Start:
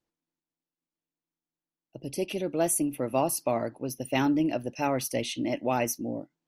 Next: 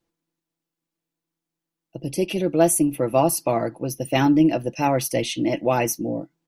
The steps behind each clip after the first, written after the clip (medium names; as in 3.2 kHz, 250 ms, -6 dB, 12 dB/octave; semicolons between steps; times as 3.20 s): bass shelf 430 Hz +3 dB; comb 6 ms, depth 47%; trim +5 dB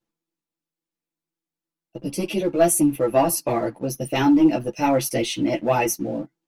waveshaping leveller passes 1; three-phase chorus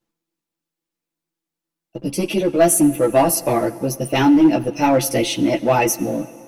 in parallel at -3.5 dB: hard clipper -15 dBFS, distortion -13 dB; on the sum: reverberation RT60 2.3 s, pre-delay 73 ms, DRR 17.5 dB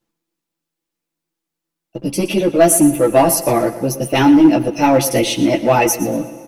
feedback delay 118 ms, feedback 33%, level -14.5 dB; trim +3 dB